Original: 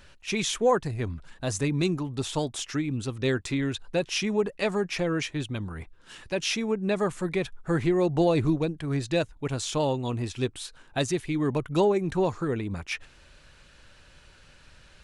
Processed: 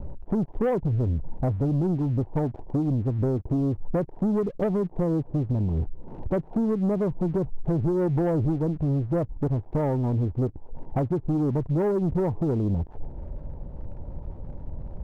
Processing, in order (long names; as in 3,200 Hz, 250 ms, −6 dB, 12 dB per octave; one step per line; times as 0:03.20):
Butterworth low-pass 950 Hz 96 dB per octave
low-shelf EQ 350 Hz +10.5 dB
downward compressor 8 to 1, threshold −30 dBFS, peak gain reduction 17 dB
leveller curve on the samples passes 2
level +3.5 dB